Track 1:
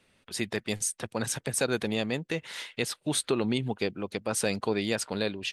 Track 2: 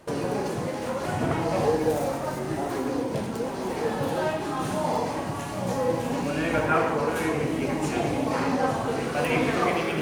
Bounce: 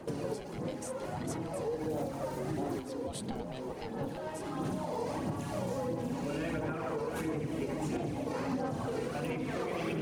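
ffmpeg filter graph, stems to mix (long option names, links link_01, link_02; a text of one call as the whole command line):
ffmpeg -i stem1.wav -i stem2.wav -filter_complex "[0:a]aeval=exprs='val(0)*sin(2*PI*390*n/s)':channel_layout=same,alimiter=limit=-20.5dB:level=0:latency=1:release=185,volume=0.5dB,afade=type=out:start_time=1.39:duration=0.2:silence=0.334965,afade=type=in:start_time=2.4:duration=0.66:silence=0.281838,afade=type=out:start_time=3.93:duration=0.75:silence=0.223872,asplit=2[link_01][link_02];[1:a]equalizer=frequency=280:width_type=o:width=2.5:gain=7,alimiter=limit=-16dB:level=0:latency=1:release=153,aphaser=in_gain=1:out_gain=1:delay=2.2:decay=0.41:speed=1.5:type=sinusoidal,volume=-4dB[link_03];[link_02]apad=whole_len=441738[link_04];[link_03][link_04]sidechaincompress=threshold=-47dB:ratio=12:attack=9:release=1290[link_05];[link_01][link_05]amix=inputs=2:normalize=0,acrossover=split=180|3000[link_06][link_07][link_08];[link_07]acompressor=threshold=-35dB:ratio=1.5[link_09];[link_06][link_09][link_08]amix=inputs=3:normalize=0,alimiter=level_in=1.5dB:limit=-24dB:level=0:latency=1:release=438,volume=-1.5dB" out.wav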